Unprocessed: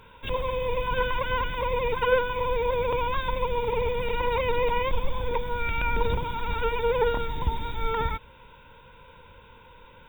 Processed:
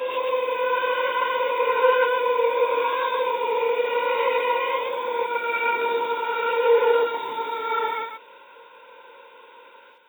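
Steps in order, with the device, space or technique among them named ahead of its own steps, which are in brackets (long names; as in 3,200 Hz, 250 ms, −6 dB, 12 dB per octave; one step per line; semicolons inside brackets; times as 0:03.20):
ghost voice (reversed playback; convolution reverb RT60 1.6 s, pre-delay 104 ms, DRR −8 dB; reversed playback; high-pass filter 360 Hz 24 dB per octave)
level −3.5 dB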